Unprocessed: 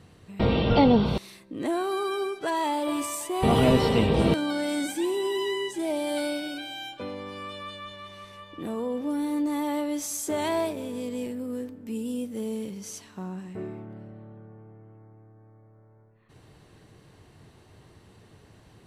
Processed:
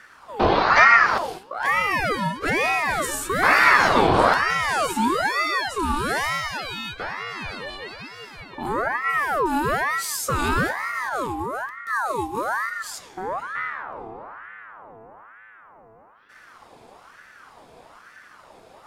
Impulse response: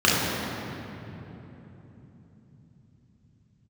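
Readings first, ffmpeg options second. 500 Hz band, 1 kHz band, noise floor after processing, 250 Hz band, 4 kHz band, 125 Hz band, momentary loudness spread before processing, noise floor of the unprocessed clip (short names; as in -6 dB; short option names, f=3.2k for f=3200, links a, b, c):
+0.5 dB, +11.0 dB, -50 dBFS, -4.0 dB, +4.0 dB, -3.5 dB, 18 LU, -56 dBFS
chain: -filter_complex "[0:a]acontrast=82,asplit=2[a][b];[1:a]atrim=start_sample=2205,afade=t=out:st=0.26:d=0.01,atrim=end_sample=11907[c];[b][c]afir=irnorm=-1:irlink=0,volume=-29dB[d];[a][d]amix=inputs=2:normalize=0,aeval=exprs='val(0)*sin(2*PI*1100*n/s+1100*0.5/1.1*sin(2*PI*1.1*n/s))':c=same"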